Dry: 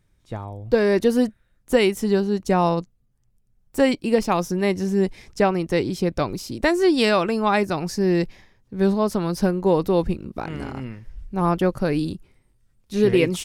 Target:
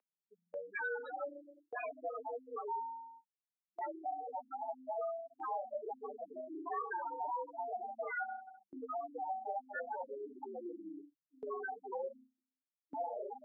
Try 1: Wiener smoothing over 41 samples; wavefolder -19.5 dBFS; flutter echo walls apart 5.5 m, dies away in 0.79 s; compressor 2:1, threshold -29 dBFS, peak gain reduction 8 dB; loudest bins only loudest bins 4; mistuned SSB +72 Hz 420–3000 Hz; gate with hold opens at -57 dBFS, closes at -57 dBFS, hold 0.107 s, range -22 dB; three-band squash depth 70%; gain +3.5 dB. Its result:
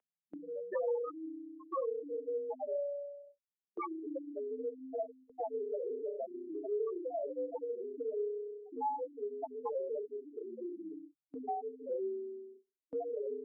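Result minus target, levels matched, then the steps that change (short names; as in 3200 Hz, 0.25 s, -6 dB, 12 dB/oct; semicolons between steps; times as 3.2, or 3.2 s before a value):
wavefolder: distortion -19 dB
change: wavefolder -28.5 dBFS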